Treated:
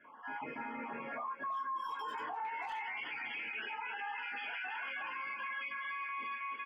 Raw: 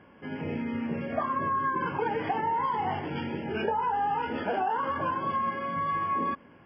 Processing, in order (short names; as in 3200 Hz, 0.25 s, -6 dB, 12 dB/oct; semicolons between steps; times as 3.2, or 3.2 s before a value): random spectral dropouts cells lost 34%; band-pass 1000 Hz, Q 3.8, from 2.45 s 2400 Hz; tilt +2 dB/oct; speakerphone echo 0.32 s, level -6 dB; compressor, threshold -40 dBFS, peak gain reduction 13 dB; reverb, pre-delay 3 ms, DRR -6 dB; limiter -39 dBFS, peak gain reduction 11.5 dB; gain +6 dB